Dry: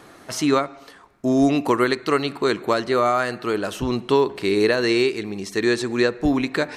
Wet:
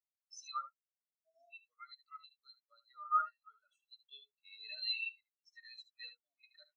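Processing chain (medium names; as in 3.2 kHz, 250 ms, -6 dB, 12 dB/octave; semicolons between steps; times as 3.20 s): Butterworth band-stop 850 Hz, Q 2.2; comb 1.5 ms, depth 67%; 1.45–3.12 s: compression 2:1, threshold -22 dBFS, peak gain reduction 5 dB; pre-emphasis filter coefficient 0.97; delay 75 ms -4.5 dB; hard clipper -27.5 dBFS, distortion -14 dB; frequency weighting A; spectral contrast expander 4:1; trim +1.5 dB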